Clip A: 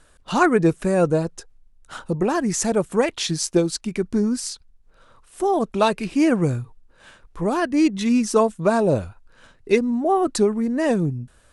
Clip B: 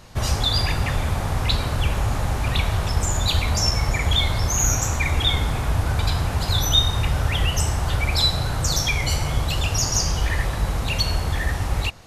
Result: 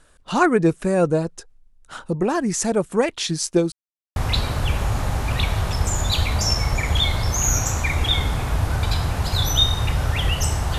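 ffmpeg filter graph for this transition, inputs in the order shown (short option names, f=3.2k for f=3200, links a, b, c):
-filter_complex "[0:a]apad=whole_dur=10.78,atrim=end=10.78,asplit=2[a][b];[a]atrim=end=3.72,asetpts=PTS-STARTPTS,afade=t=out:st=3.716:d=0.004:c=hsin[c];[b]atrim=start=3.72:end=4.16,asetpts=PTS-STARTPTS,volume=0[d];[1:a]atrim=start=1.32:end=7.94,asetpts=PTS-STARTPTS,afade=t=in:d=0.004:c=hsin[e];[c][d][e]concat=n=3:v=0:a=1"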